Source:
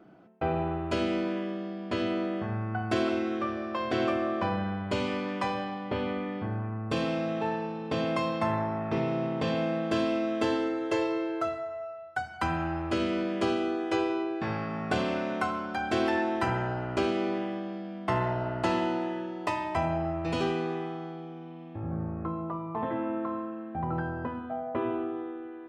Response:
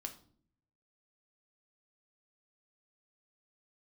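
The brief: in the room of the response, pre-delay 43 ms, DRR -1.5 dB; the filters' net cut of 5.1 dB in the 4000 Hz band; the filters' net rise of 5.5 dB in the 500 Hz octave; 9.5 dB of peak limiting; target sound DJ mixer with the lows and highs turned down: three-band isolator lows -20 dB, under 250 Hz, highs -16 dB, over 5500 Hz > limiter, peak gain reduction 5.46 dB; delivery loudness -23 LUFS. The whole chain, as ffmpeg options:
-filter_complex "[0:a]equalizer=f=500:t=o:g=8.5,equalizer=f=4k:t=o:g=-6,alimiter=limit=-20dB:level=0:latency=1,asplit=2[a][b];[1:a]atrim=start_sample=2205,adelay=43[c];[b][c]afir=irnorm=-1:irlink=0,volume=4dB[d];[a][d]amix=inputs=2:normalize=0,acrossover=split=250 5500:gain=0.1 1 0.158[e][f][g];[e][f][g]amix=inputs=3:normalize=0,volume=4.5dB,alimiter=limit=-13.5dB:level=0:latency=1"

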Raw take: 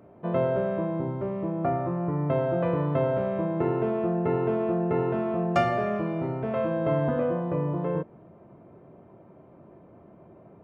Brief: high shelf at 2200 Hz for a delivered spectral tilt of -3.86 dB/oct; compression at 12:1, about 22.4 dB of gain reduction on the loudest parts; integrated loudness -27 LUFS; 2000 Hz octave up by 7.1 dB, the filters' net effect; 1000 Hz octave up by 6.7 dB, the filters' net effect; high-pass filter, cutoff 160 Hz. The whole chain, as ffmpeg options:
-af "highpass=160,equalizer=f=1k:t=o:g=8,equalizer=f=2k:t=o:g=4,highshelf=f=2.2k:g=4,acompressor=threshold=-36dB:ratio=12,volume=13.5dB"

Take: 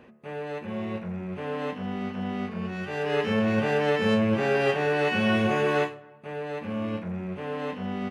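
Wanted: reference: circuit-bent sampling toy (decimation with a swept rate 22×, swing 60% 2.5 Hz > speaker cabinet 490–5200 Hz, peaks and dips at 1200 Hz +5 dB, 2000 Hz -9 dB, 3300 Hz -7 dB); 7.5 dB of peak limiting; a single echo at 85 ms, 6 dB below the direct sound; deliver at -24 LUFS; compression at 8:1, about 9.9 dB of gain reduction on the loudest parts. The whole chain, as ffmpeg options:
-af "acompressor=threshold=-30dB:ratio=8,alimiter=level_in=5.5dB:limit=-24dB:level=0:latency=1,volume=-5.5dB,aecho=1:1:85:0.501,acrusher=samples=22:mix=1:aa=0.000001:lfo=1:lforange=13.2:lforate=2.5,highpass=490,equalizer=f=1.2k:t=q:w=4:g=5,equalizer=f=2k:t=q:w=4:g=-9,equalizer=f=3.3k:t=q:w=4:g=-7,lowpass=f=5.2k:w=0.5412,lowpass=f=5.2k:w=1.3066,volume=17.5dB"

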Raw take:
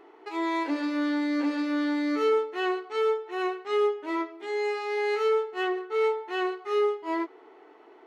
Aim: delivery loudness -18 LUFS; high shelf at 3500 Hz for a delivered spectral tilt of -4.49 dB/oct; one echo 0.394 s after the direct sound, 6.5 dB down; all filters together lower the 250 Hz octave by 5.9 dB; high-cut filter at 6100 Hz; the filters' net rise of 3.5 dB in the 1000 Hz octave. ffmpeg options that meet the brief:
-af "lowpass=6.1k,equalizer=f=250:t=o:g=-8.5,equalizer=f=1k:t=o:g=4,highshelf=f=3.5k:g=7.5,aecho=1:1:394:0.473,volume=10dB"

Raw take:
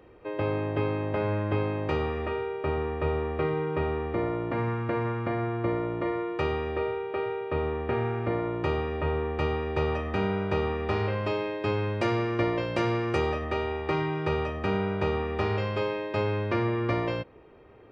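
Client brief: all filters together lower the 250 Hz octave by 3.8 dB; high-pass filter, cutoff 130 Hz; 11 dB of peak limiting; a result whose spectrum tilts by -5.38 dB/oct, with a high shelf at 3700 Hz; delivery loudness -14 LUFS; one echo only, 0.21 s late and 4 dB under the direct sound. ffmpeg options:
-af "highpass=130,equalizer=f=250:t=o:g=-5.5,highshelf=f=3.7k:g=-7.5,alimiter=level_in=2.5dB:limit=-24dB:level=0:latency=1,volume=-2.5dB,aecho=1:1:210:0.631,volume=20dB"

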